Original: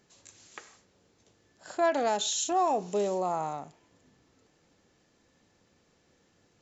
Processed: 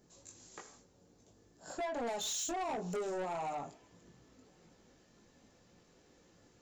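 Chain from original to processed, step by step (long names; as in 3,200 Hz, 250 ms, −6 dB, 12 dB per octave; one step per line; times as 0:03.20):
parametric band 2,400 Hz −11 dB 2.4 octaves, from 0:02.07 −3.5 dB
downward compressor 4 to 1, threshold −33 dBFS, peak gain reduction 8 dB
multi-voice chorus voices 6, 0.45 Hz, delay 20 ms, depth 3.9 ms
soft clipping −40 dBFS, distortion −8 dB
level +6 dB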